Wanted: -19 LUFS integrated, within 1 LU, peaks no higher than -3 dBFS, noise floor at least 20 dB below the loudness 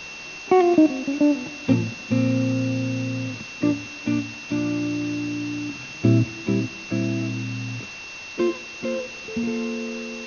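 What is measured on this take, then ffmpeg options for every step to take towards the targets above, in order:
steady tone 2700 Hz; tone level -36 dBFS; noise floor -37 dBFS; noise floor target -44 dBFS; loudness -24.0 LUFS; peak -5.0 dBFS; loudness target -19.0 LUFS
-> -af "bandreject=f=2.7k:w=30"
-af "afftdn=nr=7:nf=-37"
-af "volume=5dB,alimiter=limit=-3dB:level=0:latency=1"

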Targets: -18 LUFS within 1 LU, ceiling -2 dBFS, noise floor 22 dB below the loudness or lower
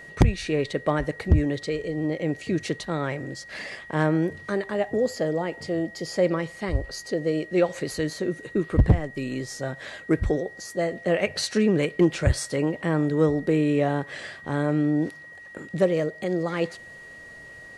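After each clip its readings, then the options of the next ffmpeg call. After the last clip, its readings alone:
steady tone 1900 Hz; tone level -42 dBFS; loudness -26.0 LUFS; peak -9.5 dBFS; loudness target -18.0 LUFS
-> -af "bandreject=f=1.9k:w=30"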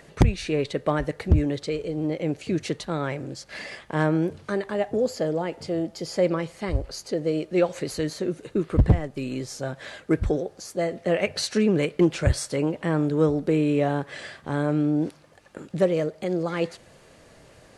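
steady tone none; loudness -26.0 LUFS; peak -9.0 dBFS; loudness target -18.0 LUFS
-> -af "volume=8dB,alimiter=limit=-2dB:level=0:latency=1"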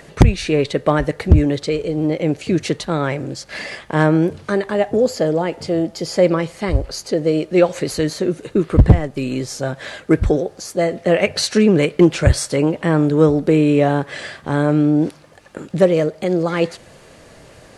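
loudness -18.0 LUFS; peak -2.0 dBFS; noise floor -45 dBFS

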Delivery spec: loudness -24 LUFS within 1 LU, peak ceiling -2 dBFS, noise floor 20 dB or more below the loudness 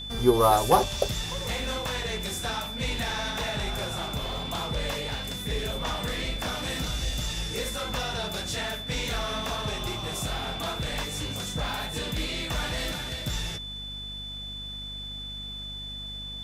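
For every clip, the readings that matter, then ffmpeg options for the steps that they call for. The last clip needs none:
hum 50 Hz; harmonics up to 250 Hz; hum level -39 dBFS; steady tone 3500 Hz; tone level -36 dBFS; loudness -29.5 LUFS; peak -6.0 dBFS; loudness target -24.0 LUFS
-> -af "bandreject=f=50:t=h:w=4,bandreject=f=100:t=h:w=4,bandreject=f=150:t=h:w=4,bandreject=f=200:t=h:w=4,bandreject=f=250:t=h:w=4"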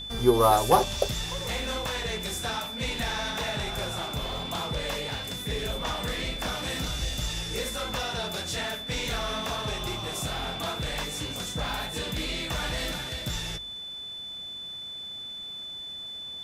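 hum none; steady tone 3500 Hz; tone level -36 dBFS
-> -af "bandreject=f=3.5k:w=30"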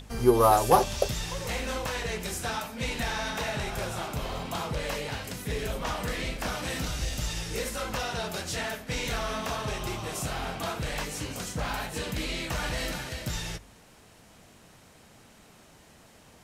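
steady tone none; loudness -30.5 LUFS; peak -6.5 dBFS; loudness target -24.0 LUFS
-> -af "volume=6.5dB,alimiter=limit=-2dB:level=0:latency=1"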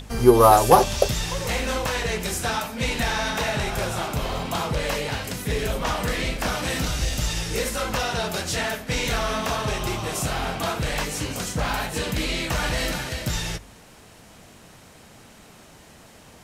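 loudness -24.0 LUFS; peak -2.0 dBFS; noise floor -49 dBFS

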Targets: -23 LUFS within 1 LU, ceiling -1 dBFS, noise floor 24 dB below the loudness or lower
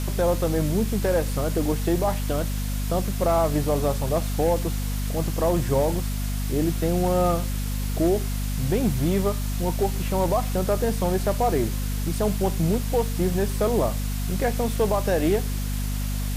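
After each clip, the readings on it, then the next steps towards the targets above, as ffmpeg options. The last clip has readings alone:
hum 50 Hz; harmonics up to 250 Hz; hum level -24 dBFS; noise floor -27 dBFS; noise floor target -49 dBFS; loudness -24.5 LUFS; peak -10.5 dBFS; loudness target -23.0 LUFS
-> -af "bandreject=f=50:t=h:w=6,bandreject=f=100:t=h:w=6,bandreject=f=150:t=h:w=6,bandreject=f=200:t=h:w=6,bandreject=f=250:t=h:w=6"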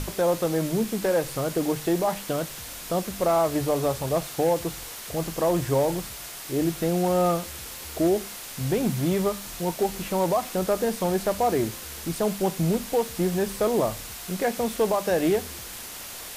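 hum none; noise floor -39 dBFS; noise floor target -50 dBFS
-> -af "afftdn=nr=11:nf=-39"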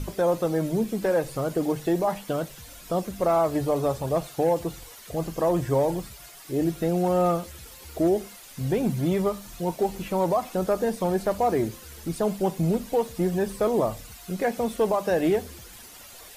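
noise floor -46 dBFS; noise floor target -50 dBFS
-> -af "afftdn=nr=6:nf=-46"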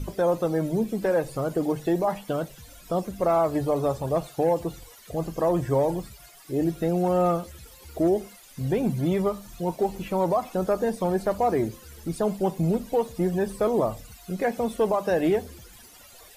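noise floor -50 dBFS; loudness -26.0 LUFS; peak -14.0 dBFS; loudness target -23.0 LUFS
-> -af "volume=3dB"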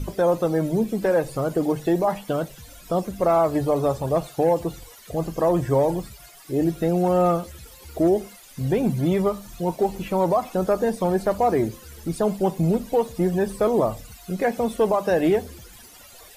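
loudness -23.0 LUFS; peak -11.0 dBFS; noise floor -47 dBFS

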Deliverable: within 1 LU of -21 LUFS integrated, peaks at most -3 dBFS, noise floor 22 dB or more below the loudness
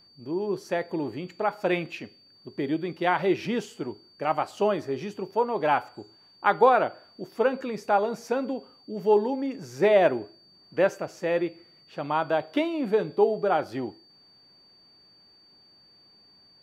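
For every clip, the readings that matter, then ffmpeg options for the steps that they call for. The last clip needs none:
steady tone 4600 Hz; tone level -55 dBFS; loudness -26.5 LUFS; peak -7.0 dBFS; loudness target -21.0 LUFS
-> -af "bandreject=f=4.6k:w=30"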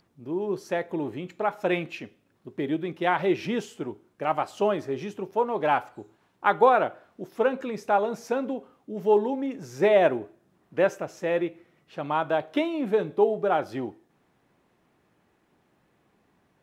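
steady tone none; loudness -26.5 LUFS; peak -7.0 dBFS; loudness target -21.0 LUFS
-> -af "volume=5.5dB,alimiter=limit=-3dB:level=0:latency=1"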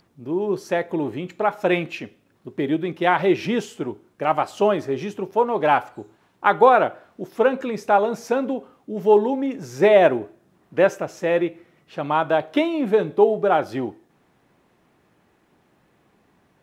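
loudness -21.0 LUFS; peak -3.0 dBFS; noise floor -63 dBFS

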